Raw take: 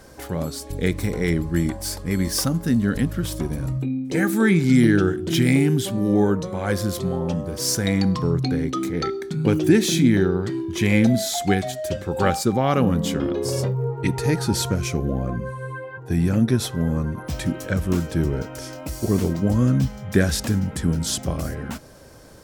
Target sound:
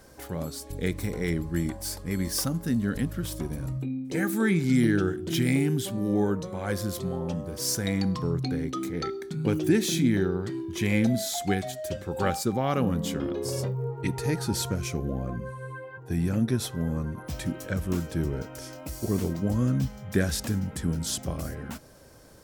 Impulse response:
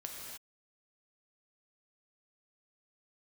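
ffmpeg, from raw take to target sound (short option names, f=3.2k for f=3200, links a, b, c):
-af "highshelf=f=11k:g=5.5,volume=-6.5dB"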